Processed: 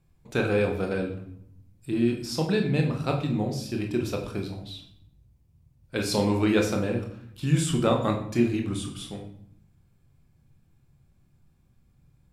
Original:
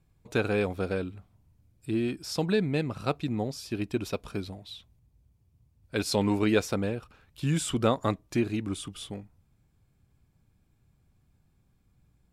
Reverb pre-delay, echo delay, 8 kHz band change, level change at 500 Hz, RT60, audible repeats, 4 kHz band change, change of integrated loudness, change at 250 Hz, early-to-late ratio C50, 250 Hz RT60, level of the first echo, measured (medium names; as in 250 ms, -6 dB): 6 ms, no echo, +1.5 dB, +2.5 dB, 0.70 s, no echo, +1.5 dB, +3.0 dB, +3.5 dB, 8.0 dB, 1.1 s, no echo